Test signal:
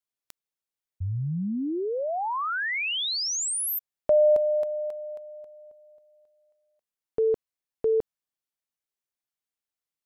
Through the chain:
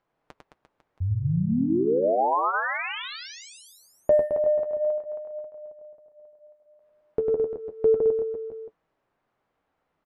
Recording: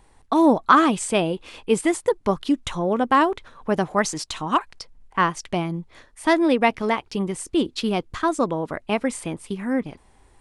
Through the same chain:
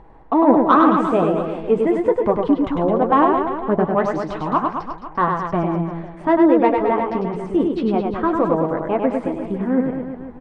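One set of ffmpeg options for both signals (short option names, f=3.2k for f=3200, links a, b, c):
-filter_complex "[0:a]lowpass=1k,lowshelf=f=340:g=-5,asplit=2[a][b];[b]acompressor=mode=upward:threshold=-26dB:ratio=1.5:attack=13:release=32:knee=2.83:detection=peak,volume=1dB[c];[a][c]amix=inputs=2:normalize=0,asoftclip=type=tanh:threshold=-2.5dB,flanger=delay=6:depth=6.4:regen=-45:speed=0.35:shape=sinusoidal,aecho=1:1:100|215|347.2|499.3|674.2:0.631|0.398|0.251|0.158|0.1,volume=3dB"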